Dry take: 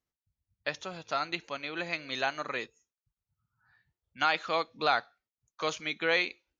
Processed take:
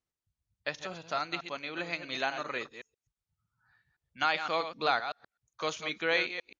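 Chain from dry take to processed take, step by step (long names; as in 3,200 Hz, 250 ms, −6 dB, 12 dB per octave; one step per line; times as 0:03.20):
delay that plays each chunk backwards 128 ms, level −9 dB
downsampling to 22,050 Hz
level −1.5 dB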